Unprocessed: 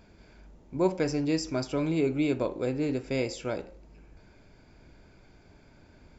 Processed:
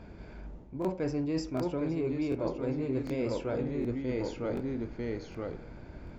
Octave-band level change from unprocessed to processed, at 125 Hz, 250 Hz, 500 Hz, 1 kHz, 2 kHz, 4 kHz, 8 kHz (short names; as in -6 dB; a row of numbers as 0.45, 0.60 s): -0.5 dB, -1.5 dB, -2.0 dB, -3.0 dB, -5.5 dB, -7.5 dB, n/a